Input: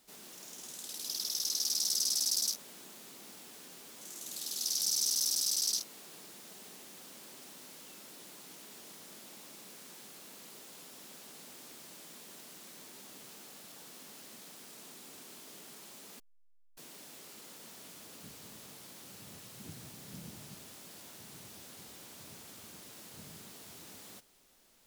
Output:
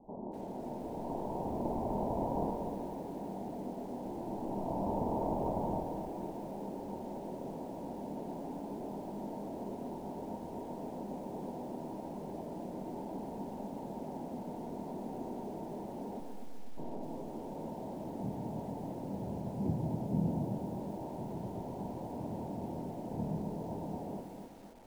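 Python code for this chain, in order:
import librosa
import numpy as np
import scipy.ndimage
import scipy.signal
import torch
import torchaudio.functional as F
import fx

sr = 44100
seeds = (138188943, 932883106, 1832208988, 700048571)

y = fx.cvsd(x, sr, bps=64000)
y = np.clip(y, -10.0 ** (-28.0 / 20.0), 10.0 ** (-28.0 / 20.0))
y = scipy.signal.sosfilt(scipy.signal.cheby1(6, 3, 950.0, 'lowpass', fs=sr, output='sos'), y)
y = fx.doubler(y, sr, ms=25.0, db=-7.0)
y = fx.echo_feedback(y, sr, ms=123, feedback_pct=30, wet_db=-7.5)
y = fx.echo_crushed(y, sr, ms=250, feedback_pct=55, bits=12, wet_db=-7.0)
y = F.gain(torch.from_numpy(y), 16.0).numpy()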